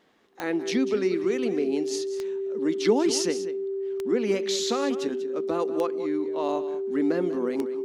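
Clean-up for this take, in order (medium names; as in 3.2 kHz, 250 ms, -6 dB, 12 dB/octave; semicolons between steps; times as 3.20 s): de-click; band-stop 390 Hz, Q 30; inverse comb 192 ms -13 dB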